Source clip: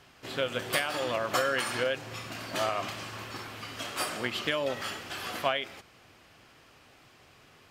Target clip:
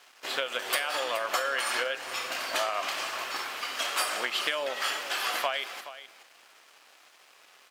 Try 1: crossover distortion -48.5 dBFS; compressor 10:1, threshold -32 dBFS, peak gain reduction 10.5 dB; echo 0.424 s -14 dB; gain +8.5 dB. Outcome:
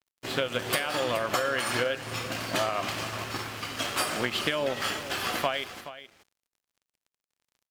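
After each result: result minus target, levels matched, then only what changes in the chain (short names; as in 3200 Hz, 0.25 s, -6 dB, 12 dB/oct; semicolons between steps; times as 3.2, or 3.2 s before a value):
crossover distortion: distortion +9 dB; 500 Hz band +3.5 dB
change: crossover distortion -59 dBFS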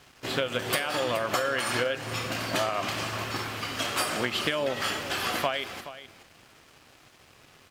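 500 Hz band +3.5 dB
add after compressor: HPF 630 Hz 12 dB/oct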